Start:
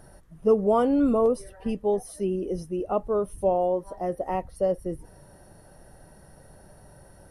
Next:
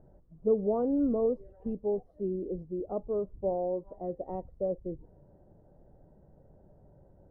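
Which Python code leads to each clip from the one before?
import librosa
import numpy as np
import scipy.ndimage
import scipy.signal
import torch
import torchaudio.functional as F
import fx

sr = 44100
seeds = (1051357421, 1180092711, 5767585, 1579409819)

y = scipy.signal.sosfilt(scipy.signal.cheby1(2, 1.0, 510.0, 'lowpass', fs=sr, output='sos'), x)
y = F.gain(torch.from_numpy(y), -5.5).numpy()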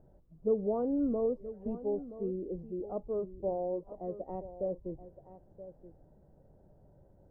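y = x + 10.0 ** (-14.0 / 20.0) * np.pad(x, (int(975 * sr / 1000.0), 0))[:len(x)]
y = F.gain(torch.from_numpy(y), -3.0).numpy()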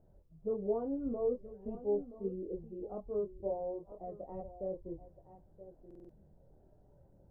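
y = fx.chorus_voices(x, sr, voices=4, hz=0.54, base_ms=25, depth_ms=1.5, mix_pct=45)
y = fx.buffer_glitch(y, sr, at_s=(5.86,), block=2048, repeats=4)
y = F.gain(torch.from_numpy(y), -1.0).numpy()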